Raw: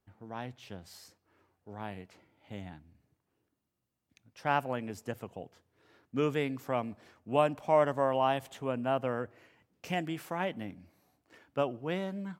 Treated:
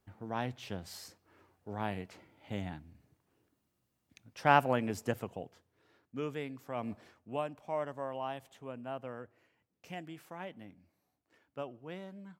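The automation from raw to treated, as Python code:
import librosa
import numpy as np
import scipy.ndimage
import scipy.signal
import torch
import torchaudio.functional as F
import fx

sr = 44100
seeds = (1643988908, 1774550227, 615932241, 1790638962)

y = fx.gain(x, sr, db=fx.line((5.07, 4.5), (6.2, -8.0), (6.74, -8.0), (6.91, 2.5), (7.44, -10.5)))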